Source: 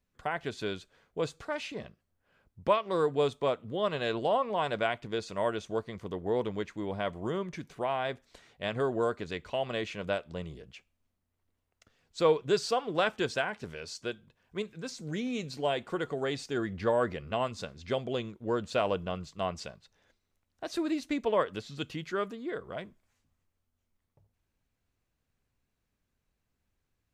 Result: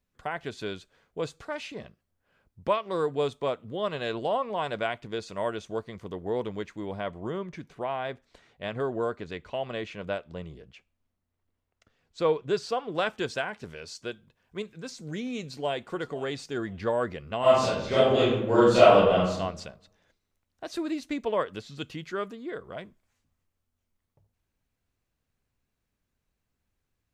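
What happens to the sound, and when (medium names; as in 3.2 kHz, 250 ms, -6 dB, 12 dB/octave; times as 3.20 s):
7.00–12.92 s: treble shelf 5 kHz -8.5 dB
15.41–15.92 s: echo throw 510 ms, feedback 20%, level -17.5 dB
17.40–19.38 s: reverb throw, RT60 0.87 s, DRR -11.5 dB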